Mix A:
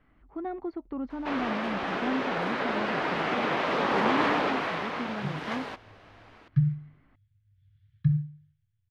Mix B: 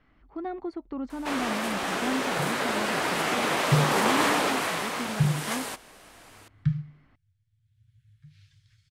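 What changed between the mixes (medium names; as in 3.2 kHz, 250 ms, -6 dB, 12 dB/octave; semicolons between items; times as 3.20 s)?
second sound: entry -2.85 s; master: remove distance through air 260 m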